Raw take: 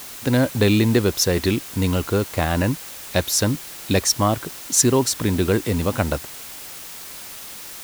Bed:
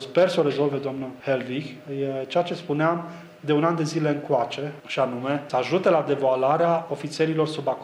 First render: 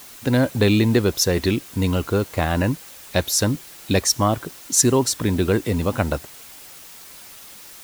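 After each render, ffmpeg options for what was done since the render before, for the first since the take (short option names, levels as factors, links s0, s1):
-af "afftdn=nr=6:nf=-37"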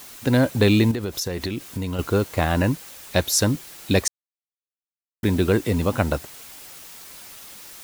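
-filter_complex "[0:a]asettb=1/sr,asplit=3[s0][s1][s2];[s0]atrim=end=0.914[s3];[s1]atrim=start=0.91:end=1.99,asetpts=PTS-STARTPTS,afade=t=in:d=0.004:c=qsin,afade=t=out:st=1.076:d=0.004:c=qsin,acompressor=threshold=0.0708:ratio=10:attack=3.2:release=140:knee=1:detection=peak[s4];[s2]atrim=start=1.986[s5];[s3][s4]acrossfade=d=0.004:c1=hsin:c2=qsin[s6];[s6][s5]acrossfade=d=0.004:c1=qsin:c2=hsin,asplit=3[s7][s8][s9];[s7]atrim=end=4.08,asetpts=PTS-STARTPTS,afade=t=out:st=4.076:d=0.004:c=hsin[s10];[s8]atrim=start=4.08:end=5.23,asetpts=PTS-STARTPTS,volume=0[s11];[s9]atrim=start=5.23,asetpts=PTS-STARTPTS,afade=t=in:d=0.004:c=hsin[s12];[s10][s11][s12]concat=n=3:v=0:a=1"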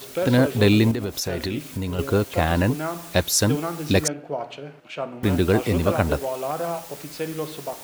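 -filter_complex "[1:a]volume=0.447[s0];[0:a][s0]amix=inputs=2:normalize=0"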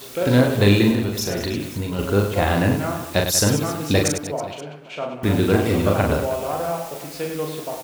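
-af "aecho=1:1:40|100|190|325|527.5:0.631|0.398|0.251|0.158|0.1"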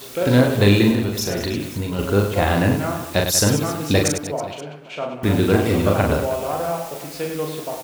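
-af "volume=1.12,alimiter=limit=0.708:level=0:latency=1"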